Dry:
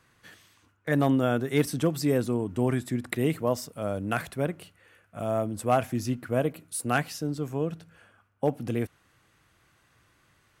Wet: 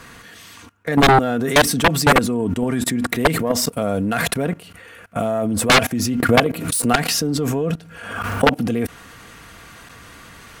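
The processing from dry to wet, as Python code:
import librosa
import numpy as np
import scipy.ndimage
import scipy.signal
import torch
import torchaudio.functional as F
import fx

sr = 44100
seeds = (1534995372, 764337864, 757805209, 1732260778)

y = fx.self_delay(x, sr, depth_ms=0.068)
y = y + 0.4 * np.pad(y, (int(4.3 * sr / 1000.0), 0))[:len(y)]
y = fx.level_steps(y, sr, step_db=22)
y = fx.fold_sine(y, sr, drive_db=18, ceiling_db=-9.5)
y = fx.pre_swell(y, sr, db_per_s=54.0, at=(6.2, 8.54))
y = y * librosa.db_to_amplitude(2.0)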